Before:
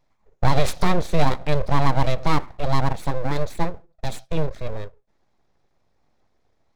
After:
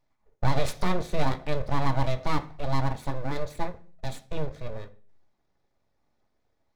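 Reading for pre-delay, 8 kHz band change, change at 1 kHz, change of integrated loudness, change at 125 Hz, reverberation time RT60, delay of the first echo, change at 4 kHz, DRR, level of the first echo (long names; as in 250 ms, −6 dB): 3 ms, can't be measured, −6.5 dB, −6.0 dB, −6.0 dB, 0.45 s, no echo audible, −6.5 dB, 7.0 dB, no echo audible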